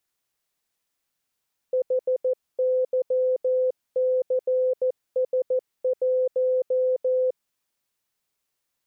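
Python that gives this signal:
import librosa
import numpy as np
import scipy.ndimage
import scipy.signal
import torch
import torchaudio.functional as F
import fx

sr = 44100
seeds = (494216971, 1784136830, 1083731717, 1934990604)

y = fx.morse(sr, text='HYCS1', wpm=14, hz=511.0, level_db=-19.0)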